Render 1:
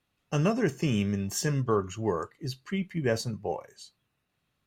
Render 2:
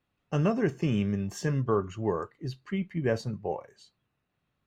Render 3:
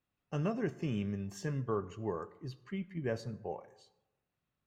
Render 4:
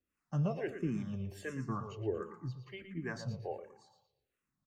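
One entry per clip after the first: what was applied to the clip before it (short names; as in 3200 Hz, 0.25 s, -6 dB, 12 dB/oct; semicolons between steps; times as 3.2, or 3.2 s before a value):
LPF 2100 Hz 6 dB/oct
reverb RT60 1.0 s, pre-delay 58 ms, DRR 18.5 dB; gain -8 dB
harmonic tremolo 2.4 Hz, depth 70%, crossover 510 Hz; on a send: feedback echo 0.116 s, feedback 37%, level -10 dB; on the sum: endless phaser -1.4 Hz; gain +4.5 dB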